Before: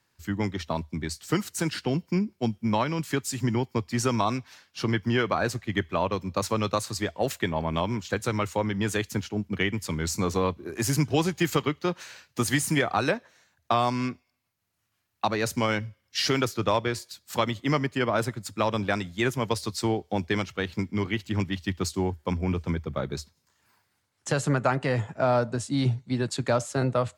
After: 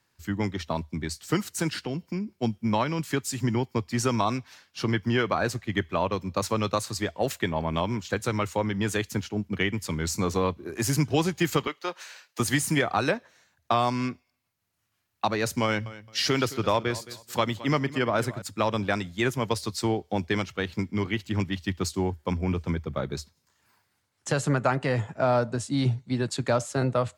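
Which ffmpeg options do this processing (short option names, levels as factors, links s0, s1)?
-filter_complex "[0:a]asettb=1/sr,asplit=3[s0][s1][s2];[s0]atrim=end=1.844[s3];[s1]atrim=start=1.84:end=2.38,asetpts=PTS-STARTPTS,afade=t=in:d=0.004:c=qsin,afade=t=out:st=0.536:d=0.004:c=qsin,acompressor=threshold=0.0355:ratio=2.5:attack=3.2:release=140:knee=1:detection=peak[s4];[s2]atrim=start=2.376[s5];[s3][s4]acrossfade=d=0.004:c1=hsin:c2=qsin[s6];[s6][s5]acrossfade=d=0.004:c1=qsin:c2=hsin,asettb=1/sr,asplit=3[s7][s8][s9];[s7]atrim=end=11.674[s10];[s8]atrim=start=11.67:end=12.4,asetpts=PTS-STARTPTS,afade=t=in:d=0.004:c=qsin,afade=t=out:st=0.726:d=0.004:c=qsin,highpass=530[s11];[s9]atrim=start=12.396[s12];[s10][s11]acrossfade=d=0.004:c1=hsin:c2=qsin[s13];[s13][s12]acrossfade=d=0.004:c1=qsin:c2=hsin,asettb=1/sr,asplit=3[s14][s15][s16];[s14]atrim=end=15.644[s17];[s15]atrim=start=15.64:end=18.42,asetpts=PTS-STARTPTS,afade=t=in:d=0.004:c=qsin,afade=t=out:st=2.776:d=0.004:c=qsin,aecho=1:1:218|436:0.141|0.0353,atrim=end_sample=122598[s18];[s16]atrim=start=18.416[s19];[s17][s18]acrossfade=d=0.004:c1=hsin:c2=qsin[s20];[s20][s19]acrossfade=d=0.004:c1=qsin:c2=hsin"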